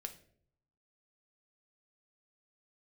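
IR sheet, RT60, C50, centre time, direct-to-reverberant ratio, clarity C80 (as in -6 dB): 0.60 s, 13.0 dB, 8 ms, 5.5 dB, 17.0 dB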